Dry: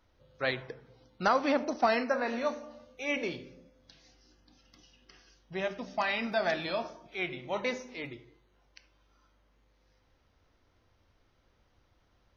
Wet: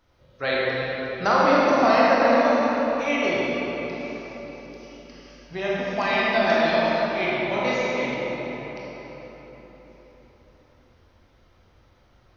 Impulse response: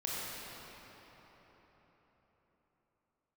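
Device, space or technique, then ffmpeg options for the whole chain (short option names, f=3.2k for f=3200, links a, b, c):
cathedral: -filter_complex "[1:a]atrim=start_sample=2205[a];[0:a][a]afir=irnorm=-1:irlink=0,volume=6dB"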